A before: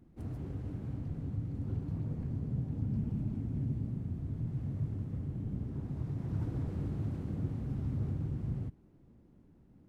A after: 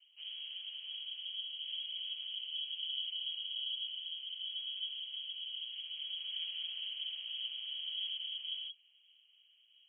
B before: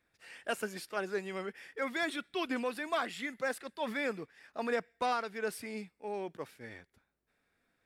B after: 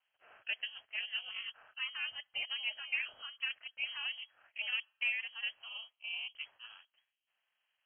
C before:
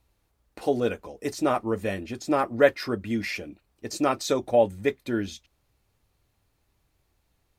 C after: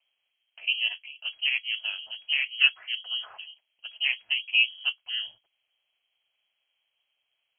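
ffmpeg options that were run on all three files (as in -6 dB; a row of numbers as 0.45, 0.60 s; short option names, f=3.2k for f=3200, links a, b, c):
-filter_complex "[0:a]highpass=60,aeval=exprs='val(0)*sin(2*PI*120*n/s)':c=same,acrossover=split=220|1800[a][b][c];[c]acompressor=threshold=-54dB:ratio=6[d];[a][b][d]amix=inputs=3:normalize=0,lowpass=f=2.8k:t=q:w=0.5098,lowpass=f=2.8k:t=q:w=0.6013,lowpass=f=2.8k:t=q:w=0.9,lowpass=f=2.8k:t=q:w=2.563,afreqshift=-3300,equalizer=f=100:t=o:w=0.67:g=8,equalizer=f=630:t=o:w=0.67:g=9,equalizer=f=2.5k:t=o:w=0.67:g=10,volume=-8dB"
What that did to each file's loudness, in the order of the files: -1.5, -1.5, 0.0 LU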